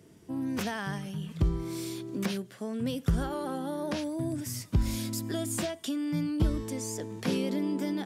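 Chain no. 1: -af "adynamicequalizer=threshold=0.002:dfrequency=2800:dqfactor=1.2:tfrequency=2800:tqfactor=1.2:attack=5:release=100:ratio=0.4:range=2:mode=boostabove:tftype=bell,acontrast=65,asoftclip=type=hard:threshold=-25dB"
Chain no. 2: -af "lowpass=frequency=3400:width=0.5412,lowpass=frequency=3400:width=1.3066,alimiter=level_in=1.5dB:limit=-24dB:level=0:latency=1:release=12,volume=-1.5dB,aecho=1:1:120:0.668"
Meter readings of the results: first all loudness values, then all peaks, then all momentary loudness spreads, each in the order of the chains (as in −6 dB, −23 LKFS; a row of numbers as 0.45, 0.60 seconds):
−29.0, −33.5 LKFS; −25.0, −21.0 dBFS; 3, 5 LU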